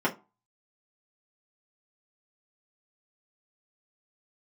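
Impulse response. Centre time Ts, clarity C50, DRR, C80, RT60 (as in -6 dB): 11 ms, 16.5 dB, -5.5 dB, 24.0 dB, 0.30 s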